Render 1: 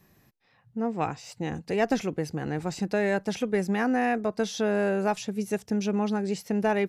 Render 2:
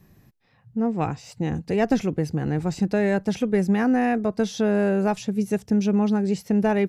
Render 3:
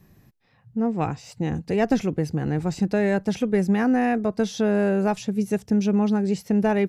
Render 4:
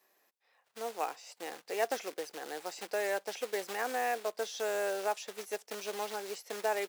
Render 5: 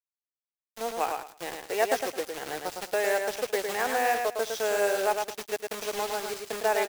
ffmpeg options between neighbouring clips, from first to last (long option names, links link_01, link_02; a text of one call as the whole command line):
ffmpeg -i in.wav -af "lowshelf=frequency=290:gain=10.5" out.wav
ffmpeg -i in.wav -af anull out.wav
ffmpeg -i in.wav -af "acrusher=bits=4:mode=log:mix=0:aa=0.000001,highpass=frequency=480:width=0.5412,highpass=frequency=480:width=1.3066,volume=-6.5dB" out.wav
ffmpeg -i in.wav -filter_complex "[0:a]aeval=exprs='val(0)*gte(abs(val(0)),0.00841)':channel_layout=same,asplit=2[link_01][link_02];[link_02]aecho=0:1:108|216|324:0.562|0.118|0.0248[link_03];[link_01][link_03]amix=inputs=2:normalize=0,volume=6dB" out.wav